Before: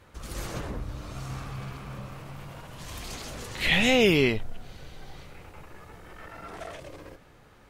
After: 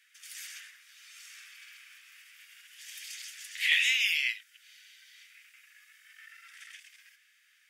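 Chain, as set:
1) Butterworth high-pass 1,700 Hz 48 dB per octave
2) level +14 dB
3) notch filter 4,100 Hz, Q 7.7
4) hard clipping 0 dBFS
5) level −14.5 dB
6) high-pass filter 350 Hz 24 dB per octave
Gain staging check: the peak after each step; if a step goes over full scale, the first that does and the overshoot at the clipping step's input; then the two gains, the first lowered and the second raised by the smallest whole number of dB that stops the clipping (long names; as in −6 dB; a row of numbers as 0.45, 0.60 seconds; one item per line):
−10.5, +3.5, +3.5, 0.0, −14.5, −13.0 dBFS
step 2, 3.5 dB
step 2 +10 dB, step 5 −10.5 dB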